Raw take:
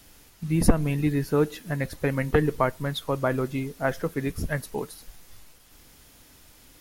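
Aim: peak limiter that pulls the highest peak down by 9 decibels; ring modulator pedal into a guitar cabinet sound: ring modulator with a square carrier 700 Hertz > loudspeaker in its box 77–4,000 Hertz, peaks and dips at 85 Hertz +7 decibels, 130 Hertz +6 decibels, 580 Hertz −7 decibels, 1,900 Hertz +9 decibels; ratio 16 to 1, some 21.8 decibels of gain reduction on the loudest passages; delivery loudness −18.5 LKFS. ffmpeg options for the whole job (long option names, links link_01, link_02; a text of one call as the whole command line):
ffmpeg -i in.wav -af "acompressor=threshold=-32dB:ratio=16,alimiter=level_in=4dB:limit=-24dB:level=0:latency=1,volume=-4dB,aeval=exprs='val(0)*sgn(sin(2*PI*700*n/s))':channel_layout=same,highpass=77,equalizer=frequency=85:width_type=q:width=4:gain=7,equalizer=frequency=130:width_type=q:width=4:gain=6,equalizer=frequency=580:width_type=q:width=4:gain=-7,equalizer=frequency=1900:width_type=q:width=4:gain=9,lowpass=frequency=4000:width=0.5412,lowpass=frequency=4000:width=1.3066,volume=20dB" out.wav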